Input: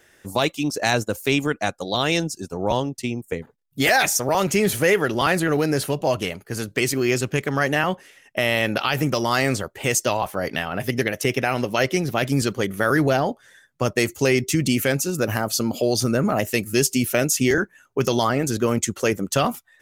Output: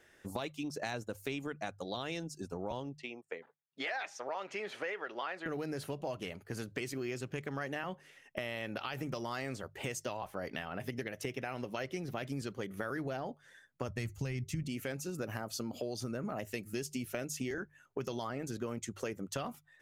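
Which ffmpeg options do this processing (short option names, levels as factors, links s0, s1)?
-filter_complex "[0:a]asettb=1/sr,asplit=3[s0][s1][s2];[s0]atrim=end=2.964[s3];[s1]atrim=start=2.96:end=5.46,asetpts=PTS-STARTPTS,afade=t=in:d=0.004:c=qsin,afade=t=out:st=2.496:d=0.004:c=qsin,highpass=580,lowpass=3400[s4];[s2]atrim=start=5.456[s5];[s3][s4]acrossfade=d=0.004:c1=hsin:c2=qsin[s6];[s6][s5]acrossfade=d=0.004:c1=qsin:c2=hsin,asplit=3[s7][s8][s9];[s7]afade=t=out:st=13.88:d=0.02[s10];[s8]asubboost=boost=9:cutoff=120,afade=t=in:st=13.88:d=0.02,afade=t=out:st=14.62:d=0.02[s11];[s9]afade=t=in:st=14.62:d=0.02[s12];[s10][s11][s12]amix=inputs=3:normalize=0,highshelf=f=5800:g=-7.5,bandreject=f=50:t=h:w=6,bandreject=f=100:t=h:w=6,bandreject=f=150:t=h:w=6,acompressor=threshold=0.0316:ratio=4,volume=0.447"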